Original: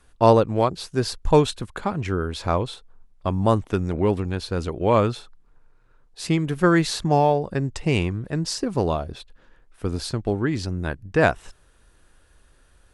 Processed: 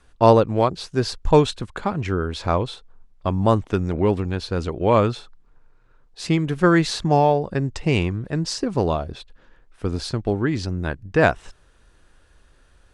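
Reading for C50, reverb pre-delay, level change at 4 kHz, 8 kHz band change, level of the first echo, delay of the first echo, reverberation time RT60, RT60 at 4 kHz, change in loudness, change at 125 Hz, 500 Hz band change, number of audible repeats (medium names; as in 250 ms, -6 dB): no reverb, no reverb, +1.0 dB, -1.0 dB, no echo, no echo, no reverb, no reverb, +1.5 dB, +1.5 dB, +1.5 dB, no echo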